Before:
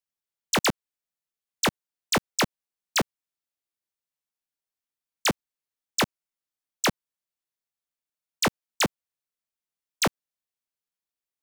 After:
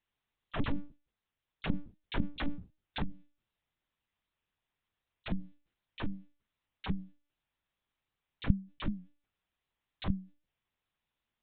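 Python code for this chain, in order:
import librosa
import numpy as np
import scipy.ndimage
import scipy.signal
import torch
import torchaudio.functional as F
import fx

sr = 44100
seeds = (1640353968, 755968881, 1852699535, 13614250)

y = fx.hum_notches(x, sr, base_hz=50, count=4)
y = fx.over_compress(y, sr, threshold_db=-30.0, ratio=-0.5)
y = fx.leveller(y, sr, passes=1, at=(0.55, 3.01))
y = fx.lpc_monotone(y, sr, seeds[0], pitch_hz=290.0, order=8)
y = fx.record_warp(y, sr, rpm=78.0, depth_cents=100.0)
y = F.gain(torch.from_numpy(y), 1.5).numpy()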